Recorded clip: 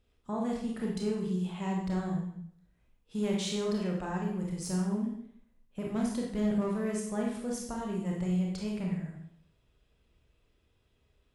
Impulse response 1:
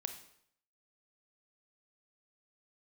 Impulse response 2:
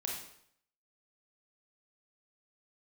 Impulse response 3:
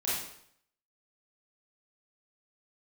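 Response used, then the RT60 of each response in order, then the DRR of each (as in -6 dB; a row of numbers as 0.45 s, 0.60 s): 2; 0.65 s, 0.65 s, 0.65 s; 7.0 dB, -2.0 dB, -9.5 dB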